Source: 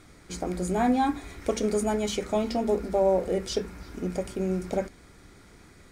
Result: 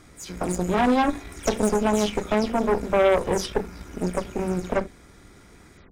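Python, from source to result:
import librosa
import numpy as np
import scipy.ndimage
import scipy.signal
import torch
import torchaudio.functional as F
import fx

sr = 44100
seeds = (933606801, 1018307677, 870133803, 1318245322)

y = fx.spec_delay(x, sr, highs='early', ms=139)
y = fx.cheby_harmonics(y, sr, harmonics=(6,), levels_db=(-13,), full_scale_db=-12.5)
y = fx.notch(y, sr, hz=4400.0, q=15.0)
y = F.gain(torch.from_numpy(y), 2.5).numpy()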